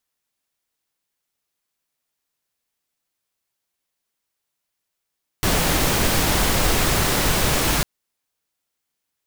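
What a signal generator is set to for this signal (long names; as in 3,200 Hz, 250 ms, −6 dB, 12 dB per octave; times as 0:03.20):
noise pink, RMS −19 dBFS 2.40 s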